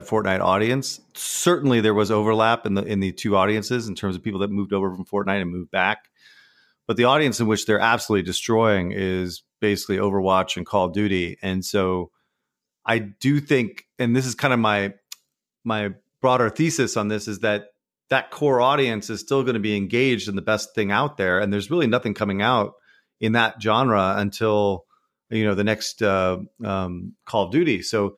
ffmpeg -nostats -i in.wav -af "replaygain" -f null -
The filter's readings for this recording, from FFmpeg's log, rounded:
track_gain = +2.2 dB
track_peak = 0.472